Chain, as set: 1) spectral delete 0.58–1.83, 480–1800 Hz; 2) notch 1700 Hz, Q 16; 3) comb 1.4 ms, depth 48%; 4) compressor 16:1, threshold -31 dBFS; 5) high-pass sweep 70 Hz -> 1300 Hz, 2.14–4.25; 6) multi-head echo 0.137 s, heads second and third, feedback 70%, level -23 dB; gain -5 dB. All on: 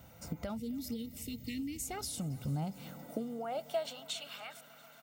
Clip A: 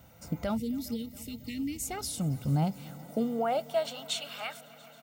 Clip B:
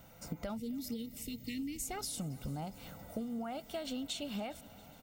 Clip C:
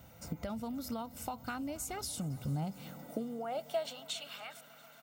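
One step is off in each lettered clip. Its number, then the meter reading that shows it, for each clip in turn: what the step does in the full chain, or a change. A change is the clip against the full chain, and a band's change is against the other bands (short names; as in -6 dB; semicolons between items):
4, mean gain reduction 4.0 dB; 5, loudness change -1.0 LU; 1, 1 kHz band +2.5 dB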